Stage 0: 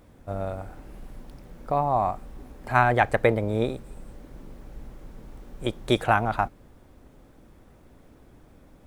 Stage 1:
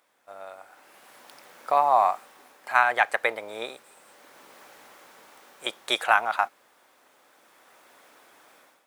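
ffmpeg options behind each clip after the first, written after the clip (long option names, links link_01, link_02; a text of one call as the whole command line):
ffmpeg -i in.wav -af "highpass=980,dynaudnorm=framelen=660:gausssize=3:maxgain=14.5dB,volume=-3.5dB" out.wav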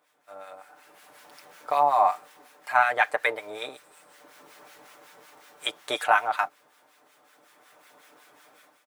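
ffmpeg -i in.wav -filter_complex "[0:a]aecho=1:1:6.7:0.58,acrossover=split=1200[link_01][link_02];[link_01]aeval=exprs='val(0)*(1-0.7/2+0.7/2*cos(2*PI*5.4*n/s))':channel_layout=same[link_03];[link_02]aeval=exprs='val(0)*(1-0.7/2-0.7/2*cos(2*PI*5.4*n/s))':channel_layout=same[link_04];[link_03][link_04]amix=inputs=2:normalize=0,volume=1.5dB" out.wav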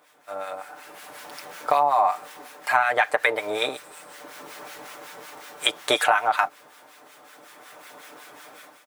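ffmpeg -i in.wav -filter_complex "[0:a]asplit=2[link_01][link_02];[link_02]alimiter=limit=-15dB:level=0:latency=1,volume=-1dB[link_03];[link_01][link_03]amix=inputs=2:normalize=0,acompressor=threshold=-21dB:ratio=6,volume=5dB" out.wav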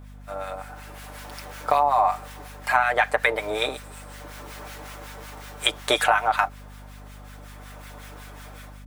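ffmpeg -i in.wav -af "aeval=exprs='val(0)+0.00794*(sin(2*PI*50*n/s)+sin(2*PI*2*50*n/s)/2+sin(2*PI*3*50*n/s)/3+sin(2*PI*4*50*n/s)/4+sin(2*PI*5*50*n/s)/5)':channel_layout=same" out.wav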